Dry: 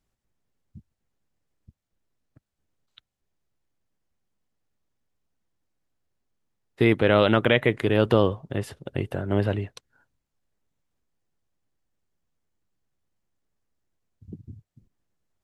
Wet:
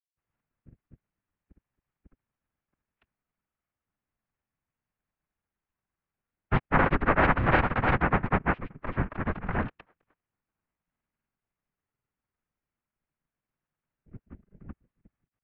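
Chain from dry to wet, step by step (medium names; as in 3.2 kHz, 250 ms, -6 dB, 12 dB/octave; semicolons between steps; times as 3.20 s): noise-vocoded speech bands 3; mistuned SSB -240 Hz 220–2900 Hz; granulator 100 ms, grains 20 per s, spray 365 ms, pitch spread up and down by 0 st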